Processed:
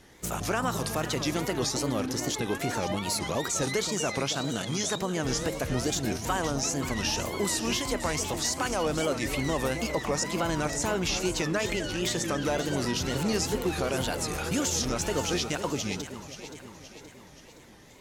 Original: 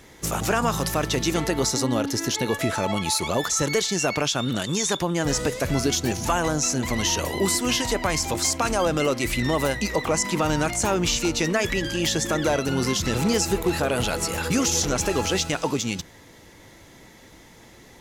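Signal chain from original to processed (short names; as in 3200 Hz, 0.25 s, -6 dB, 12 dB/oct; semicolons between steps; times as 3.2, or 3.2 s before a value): echo with dull and thin repeats by turns 0.262 s, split 840 Hz, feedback 72%, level -8.5 dB; wow and flutter 150 cents; gain -6 dB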